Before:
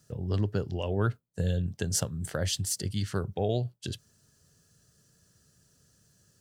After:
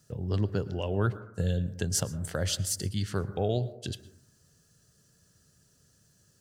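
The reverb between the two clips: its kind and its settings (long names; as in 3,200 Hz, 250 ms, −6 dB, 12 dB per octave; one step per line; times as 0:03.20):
dense smooth reverb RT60 0.75 s, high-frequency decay 0.25×, pre-delay 100 ms, DRR 15 dB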